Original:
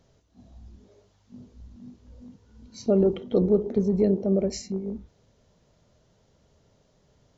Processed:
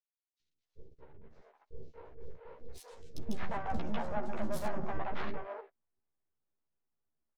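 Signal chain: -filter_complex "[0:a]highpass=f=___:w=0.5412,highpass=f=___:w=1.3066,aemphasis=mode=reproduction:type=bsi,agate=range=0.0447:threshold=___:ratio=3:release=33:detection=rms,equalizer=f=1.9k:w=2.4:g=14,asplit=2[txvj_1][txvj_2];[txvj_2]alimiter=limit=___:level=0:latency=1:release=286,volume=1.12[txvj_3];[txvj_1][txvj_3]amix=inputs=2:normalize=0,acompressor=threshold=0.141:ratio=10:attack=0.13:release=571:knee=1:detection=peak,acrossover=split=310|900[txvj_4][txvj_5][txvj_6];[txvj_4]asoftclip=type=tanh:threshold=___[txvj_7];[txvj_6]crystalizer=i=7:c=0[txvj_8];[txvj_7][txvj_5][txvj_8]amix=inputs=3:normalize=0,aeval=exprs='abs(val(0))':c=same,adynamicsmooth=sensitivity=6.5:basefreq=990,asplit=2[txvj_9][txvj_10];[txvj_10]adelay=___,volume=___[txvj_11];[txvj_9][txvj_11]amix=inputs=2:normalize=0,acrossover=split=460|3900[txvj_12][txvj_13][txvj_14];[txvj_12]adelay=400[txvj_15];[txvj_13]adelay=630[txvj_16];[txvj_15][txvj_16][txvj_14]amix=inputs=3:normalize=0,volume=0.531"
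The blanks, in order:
180, 180, 0.00224, 0.158, 0.0376, 13, 0.708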